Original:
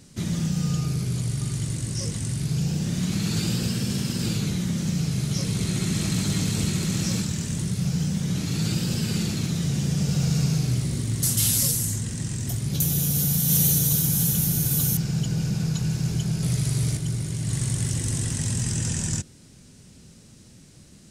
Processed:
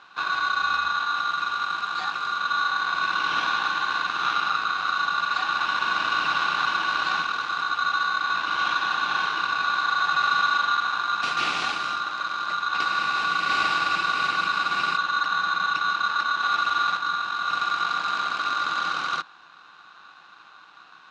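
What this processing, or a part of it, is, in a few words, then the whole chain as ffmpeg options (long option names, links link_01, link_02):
ring modulator pedal into a guitar cabinet: -filter_complex "[0:a]asplit=3[link_01][link_02][link_03];[link_01]afade=type=out:start_time=4.09:duration=0.02[link_04];[link_02]asubboost=boost=7:cutoff=71,afade=type=in:start_time=4.09:duration=0.02,afade=type=out:start_time=4.96:duration=0.02[link_05];[link_03]afade=type=in:start_time=4.96:duration=0.02[link_06];[link_04][link_05][link_06]amix=inputs=3:normalize=0,aeval=exprs='val(0)*sgn(sin(2*PI*1300*n/s))':channel_layout=same,highpass=86,equalizer=frequency=99:width_type=q:width=4:gain=-7,equalizer=frequency=170:width_type=q:width=4:gain=6,equalizer=frequency=320:width_type=q:width=4:gain=7,equalizer=frequency=780:width_type=q:width=4:gain=8,equalizer=frequency=2600:width_type=q:width=4:gain=8,lowpass=frequency=4100:width=0.5412,lowpass=frequency=4100:width=1.3066"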